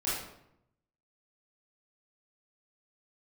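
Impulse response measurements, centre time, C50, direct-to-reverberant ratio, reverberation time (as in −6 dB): 65 ms, 0.0 dB, −10.0 dB, 0.80 s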